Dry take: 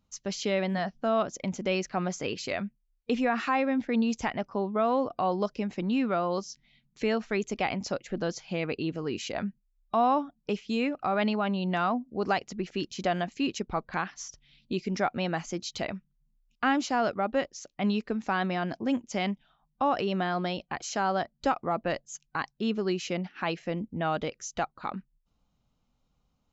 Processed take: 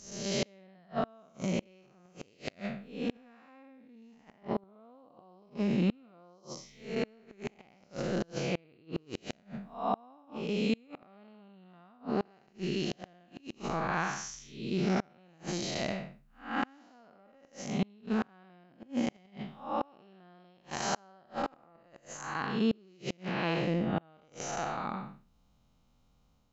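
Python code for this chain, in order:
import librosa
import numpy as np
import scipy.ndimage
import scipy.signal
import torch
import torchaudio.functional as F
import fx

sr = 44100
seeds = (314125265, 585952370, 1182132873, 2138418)

y = fx.spec_blur(x, sr, span_ms=249.0)
y = fx.gate_flip(y, sr, shuts_db=-25.0, range_db=-33)
y = y * librosa.db_to_amplitude(7.0)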